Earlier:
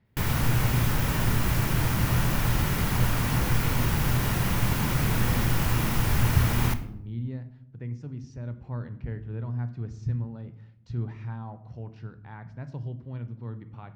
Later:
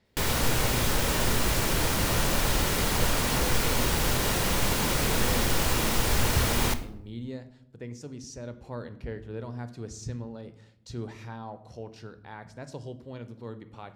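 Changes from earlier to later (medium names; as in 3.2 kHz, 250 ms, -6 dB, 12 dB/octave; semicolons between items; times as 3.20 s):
speech: remove distance through air 150 m; master: add graphic EQ 125/500/4000/8000 Hz -9/+7/+6/+7 dB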